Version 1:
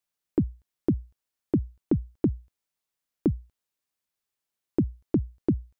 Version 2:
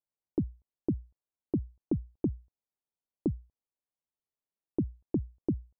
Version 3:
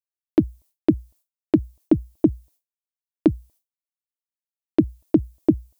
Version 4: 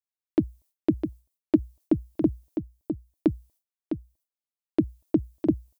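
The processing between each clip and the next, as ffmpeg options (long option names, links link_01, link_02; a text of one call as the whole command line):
ffmpeg -i in.wav -af "lowpass=frequency=1000:width=0.5412,lowpass=frequency=1000:width=1.3066,volume=-6dB" out.wav
ffmpeg -i in.wav -af "equalizer=frequency=315:width_type=o:width=0.33:gain=10,equalizer=frequency=630:width_type=o:width=0.33:gain=11,equalizer=frequency=1000:width_type=o:width=0.33:gain=4,agate=range=-33dB:threshold=-53dB:ratio=3:detection=peak,crystalizer=i=8.5:c=0,volume=6.5dB" out.wav
ffmpeg -i in.wav -af "aecho=1:1:656:0.422,volume=-5.5dB" out.wav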